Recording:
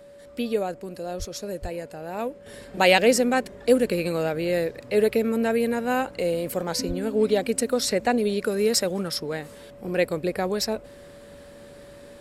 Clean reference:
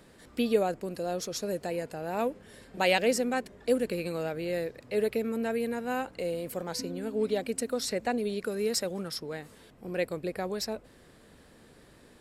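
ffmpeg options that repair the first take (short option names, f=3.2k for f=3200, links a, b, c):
-filter_complex "[0:a]bandreject=f=570:w=30,asplit=3[a][b][c];[a]afade=t=out:st=1.18:d=0.02[d];[b]highpass=f=140:w=0.5412,highpass=f=140:w=1.3066,afade=t=in:st=1.18:d=0.02,afade=t=out:st=1.3:d=0.02[e];[c]afade=t=in:st=1.3:d=0.02[f];[d][e][f]amix=inputs=3:normalize=0,asplit=3[g][h][i];[g]afade=t=out:st=1.61:d=0.02[j];[h]highpass=f=140:w=0.5412,highpass=f=140:w=1.3066,afade=t=in:st=1.61:d=0.02,afade=t=out:st=1.73:d=0.02[k];[i]afade=t=in:st=1.73:d=0.02[l];[j][k][l]amix=inputs=3:normalize=0,asplit=3[m][n][o];[m]afade=t=out:st=6.87:d=0.02[p];[n]highpass=f=140:w=0.5412,highpass=f=140:w=1.3066,afade=t=in:st=6.87:d=0.02,afade=t=out:st=6.99:d=0.02[q];[o]afade=t=in:st=6.99:d=0.02[r];[p][q][r]amix=inputs=3:normalize=0,asetnsamples=n=441:p=0,asendcmd='2.46 volume volume -7.5dB',volume=0dB"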